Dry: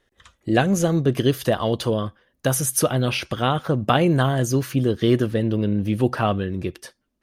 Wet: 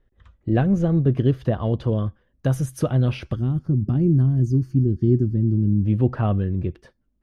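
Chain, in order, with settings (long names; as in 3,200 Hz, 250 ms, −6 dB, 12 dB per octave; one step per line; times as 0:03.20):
RIAA equalisation playback
0:03.36–0:05.85: gain on a spectral selection 400–4,300 Hz −17 dB
high-shelf EQ 5,800 Hz −10.5 dB, from 0:01.89 +2 dB, from 0:03.59 −8.5 dB
level −7 dB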